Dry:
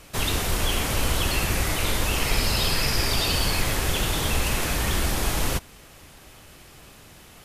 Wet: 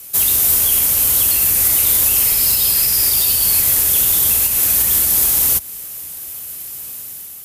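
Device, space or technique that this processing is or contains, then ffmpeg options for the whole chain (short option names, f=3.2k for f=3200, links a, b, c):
FM broadcast chain: -filter_complex "[0:a]highpass=52,dynaudnorm=f=130:g=7:m=5dB,acrossover=split=94|7400[a][b][c];[a]acompressor=threshold=-27dB:ratio=4[d];[b]acompressor=threshold=-23dB:ratio=4[e];[c]acompressor=threshold=-33dB:ratio=4[f];[d][e][f]amix=inputs=3:normalize=0,aemphasis=mode=production:type=50fm,alimiter=limit=-10dB:level=0:latency=1:release=207,asoftclip=type=hard:threshold=-13dB,lowpass=f=15k:w=0.5412,lowpass=f=15k:w=1.3066,aemphasis=mode=production:type=50fm,volume=-4dB"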